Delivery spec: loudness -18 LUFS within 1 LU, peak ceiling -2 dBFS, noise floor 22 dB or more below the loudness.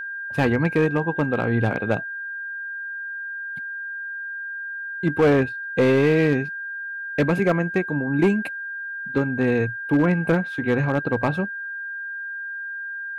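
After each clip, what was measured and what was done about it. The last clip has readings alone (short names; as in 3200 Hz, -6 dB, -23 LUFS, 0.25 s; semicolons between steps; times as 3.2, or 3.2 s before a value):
clipped 0.9%; flat tops at -12.0 dBFS; steady tone 1600 Hz; tone level -29 dBFS; loudness -23.5 LUFS; peak -12.0 dBFS; loudness target -18.0 LUFS
-> clip repair -12 dBFS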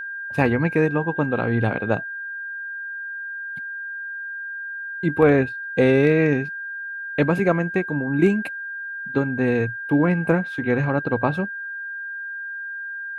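clipped 0.0%; steady tone 1600 Hz; tone level -29 dBFS
-> notch 1600 Hz, Q 30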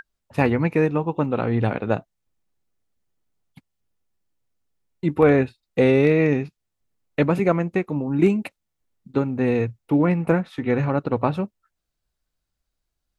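steady tone none; loudness -22.0 LUFS; peak -4.0 dBFS; loudness target -18.0 LUFS
-> gain +4 dB; limiter -2 dBFS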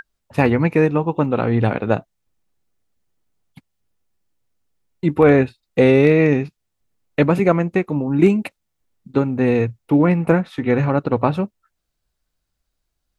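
loudness -18.0 LUFS; peak -2.0 dBFS; noise floor -76 dBFS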